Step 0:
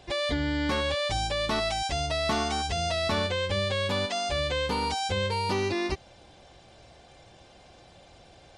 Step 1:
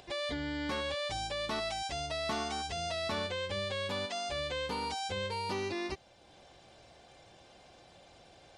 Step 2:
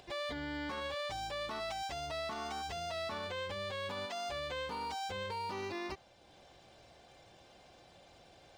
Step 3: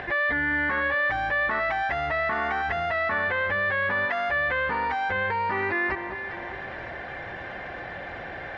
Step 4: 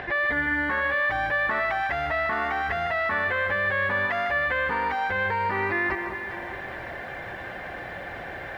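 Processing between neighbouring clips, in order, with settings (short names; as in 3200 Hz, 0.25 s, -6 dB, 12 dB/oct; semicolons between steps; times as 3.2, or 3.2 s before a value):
low shelf 120 Hz -7.5 dB; upward compressor, threshold -44 dBFS; gain -7 dB
median filter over 3 samples; dynamic EQ 1100 Hz, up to +6 dB, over -50 dBFS, Q 0.98; limiter -30.5 dBFS, peak gain reduction 10.5 dB; gain -2 dB
synth low-pass 1800 Hz, resonance Q 6.6; echo with dull and thin repeats by turns 0.202 s, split 1200 Hz, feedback 64%, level -13 dB; fast leveller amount 50%; gain +7 dB
lo-fi delay 0.153 s, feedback 35%, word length 9-bit, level -10 dB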